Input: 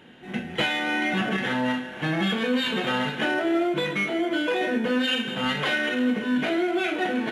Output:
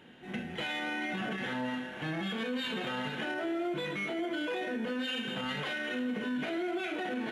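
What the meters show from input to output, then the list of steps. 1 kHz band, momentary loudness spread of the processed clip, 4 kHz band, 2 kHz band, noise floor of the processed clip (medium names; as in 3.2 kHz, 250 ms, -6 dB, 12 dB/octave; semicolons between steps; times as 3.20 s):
-9.5 dB, 2 LU, -10.0 dB, -9.5 dB, -43 dBFS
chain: peak limiter -22 dBFS, peak gain reduction 9 dB; trim -5 dB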